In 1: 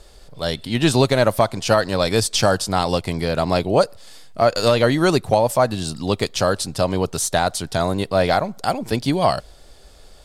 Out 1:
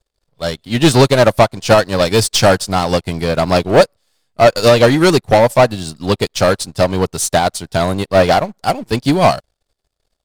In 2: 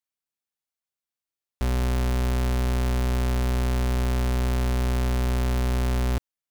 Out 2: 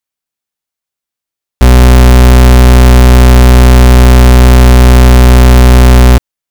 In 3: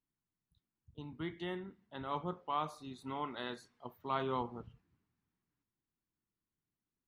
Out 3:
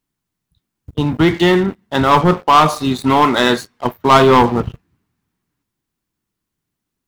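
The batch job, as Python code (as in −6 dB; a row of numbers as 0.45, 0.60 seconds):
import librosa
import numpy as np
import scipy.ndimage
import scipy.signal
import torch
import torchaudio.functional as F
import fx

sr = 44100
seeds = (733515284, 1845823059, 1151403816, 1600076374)

y = fx.leveller(x, sr, passes=3)
y = fx.upward_expand(y, sr, threshold_db=-28.0, expansion=2.5)
y = librosa.util.normalize(y) * 10.0 ** (-1.5 / 20.0)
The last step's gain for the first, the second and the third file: +3.0, +21.5, +21.0 decibels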